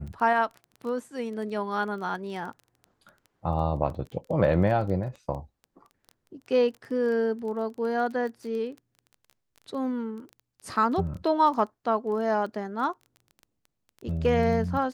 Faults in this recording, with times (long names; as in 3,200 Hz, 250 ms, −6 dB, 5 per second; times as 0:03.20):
surface crackle 14 per second −35 dBFS